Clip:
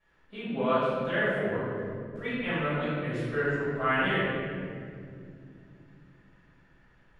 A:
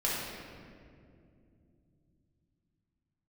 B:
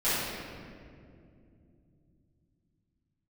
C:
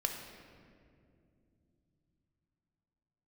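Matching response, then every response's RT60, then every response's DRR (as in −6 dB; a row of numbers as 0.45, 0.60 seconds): B; 2.5, 2.5, 2.5 seconds; −7.0, −16.0, 3.0 decibels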